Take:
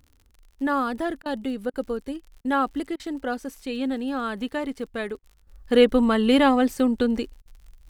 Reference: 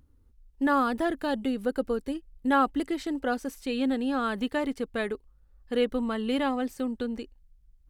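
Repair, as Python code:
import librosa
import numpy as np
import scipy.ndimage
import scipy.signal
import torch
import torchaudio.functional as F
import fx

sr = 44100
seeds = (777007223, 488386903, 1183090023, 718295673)

y = fx.fix_declick_ar(x, sr, threshold=6.5)
y = fx.fix_interpolate(y, sr, at_s=(1.22, 1.7, 2.41, 2.96, 5.19, 7.42), length_ms=36.0)
y = fx.gain(y, sr, db=fx.steps((0.0, 0.0), (5.47, -9.5)))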